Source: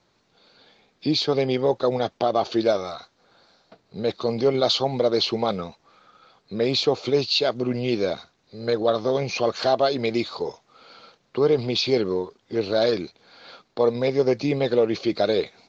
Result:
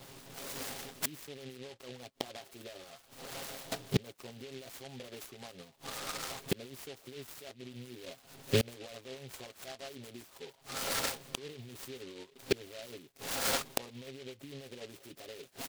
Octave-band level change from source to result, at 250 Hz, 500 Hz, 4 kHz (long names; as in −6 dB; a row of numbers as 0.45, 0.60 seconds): −17.5, −20.5, −14.0 decibels